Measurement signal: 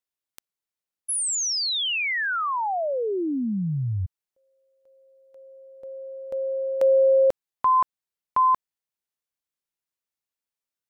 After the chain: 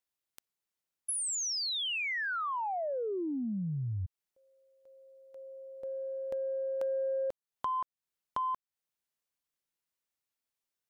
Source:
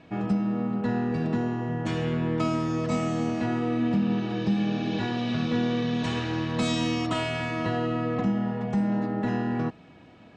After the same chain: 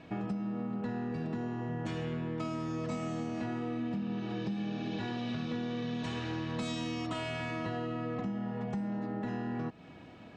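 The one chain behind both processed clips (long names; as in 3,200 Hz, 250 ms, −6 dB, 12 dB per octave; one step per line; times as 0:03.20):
downward compressor 4 to 1, threshold −34 dBFS
soft clipping −22 dBFS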